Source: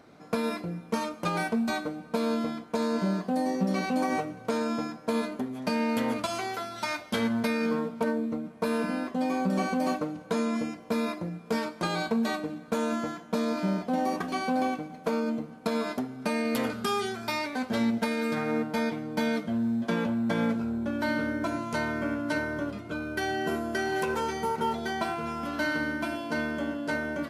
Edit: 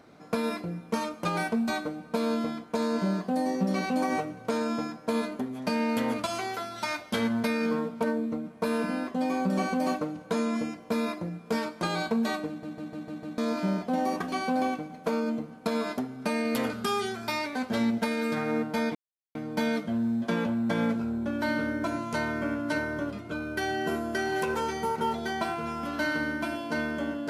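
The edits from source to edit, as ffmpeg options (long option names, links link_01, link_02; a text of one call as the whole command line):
ffmpeg -i in.wav -filter_complex "[0:a]asplit=8[link_01][link_02][link_03][link_04][link_05][link_06][link_07][link_08];[link_01]atrim=end=12.632[link_09];[link_02]atrim=start=12.478:end=12.632[link_10];[link_03]atrim=start=12.478:end=12.632[link_11];[link_04]atrim=start=12.478:end=12.632[link_12];[link_05]atrim=start=12.478:end=12.632[link_13];[link_06]atrim=start=12.478:end=12.632[link_14];[link_07]atrim=start=13.378:end=18.95,asetpts=PTS-STARTPTS,afade=type=out:start_time=5.568:duration=0.004:curve=hsin,apad=pad_dur=0.4[link_15];[link_08]atrim=start=18.95,asetpts=PTS-STARTPTS,afade=type=in:duration=0.004:curve=hsin[link_16];[link_09][link_10]acrossfade=duration=0.004:curve1=hsin:curve2=hsin[link_17];[link_17][link_11]acrossfade=duration=0.004:curve1=hsin:curve2=hsin[link_18];[link_18][link_12]acrossfade=duration=0.004:curve1=hsin:curve2=hsin[link_19];[link_19][link_13]acrossfade=duration=0.004:curve1=hsin:curve2=hsin[link_20];[link_20][link_14]acrossfade=duration=0.004:curve1=hsin:curve2=hsin[link_21];[link_15][link_16]concat=n=2:v=0:a=1[link_22];[link_21][link_22]acrossfade=duration=0.004:curve1=hsin:curve2=hsin" out.wav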